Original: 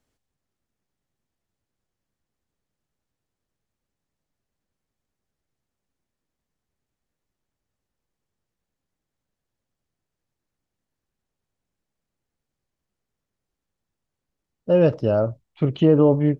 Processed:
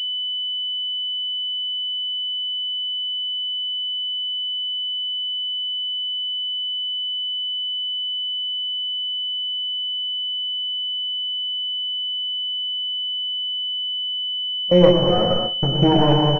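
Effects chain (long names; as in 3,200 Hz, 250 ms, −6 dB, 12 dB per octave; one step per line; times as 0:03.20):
lower of the sound and its delayed copy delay 5.6 ms
parametric band 1,100 Hz −6 dB 0.37 octaves
dense smooth reverb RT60 1.6 s, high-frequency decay 0.8×, pre-delay 80 ms, DRR 0.5 dB
noise gate with hold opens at −15 dBFS
double-tracking delay 22 ms −8 dB
switching amplifier with a slow clock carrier 3,000 Hz
level +2.5 dB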